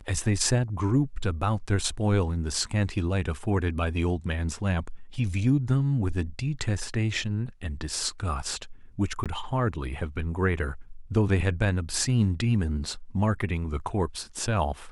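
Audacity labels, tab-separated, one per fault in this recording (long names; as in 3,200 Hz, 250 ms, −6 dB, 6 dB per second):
9.240000	9.260000	drop-out 17 ms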